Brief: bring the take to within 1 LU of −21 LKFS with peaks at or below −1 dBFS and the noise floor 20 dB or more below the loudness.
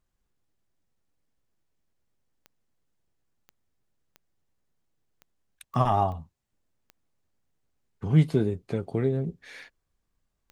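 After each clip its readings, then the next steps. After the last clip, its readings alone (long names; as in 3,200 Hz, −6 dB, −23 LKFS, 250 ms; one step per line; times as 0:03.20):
number of clicks 8; integrated loudness −26.5 LKFS; sample peak −8.0 dBFS; target loudness −21.0 LKFS
→ click removal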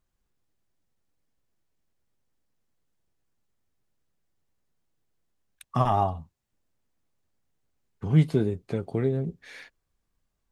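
number of clicks 0; integrated loudness −26.5 LKFS; sample peak −8.0 dBFS; target loudness −21.0 LKFS
→ level +5.5 dB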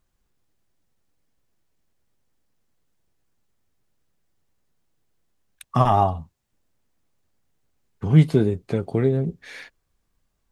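integrated loudness −21.0 LKFS; sample peak −3.0 dBFS; background noise floor −74 dBFS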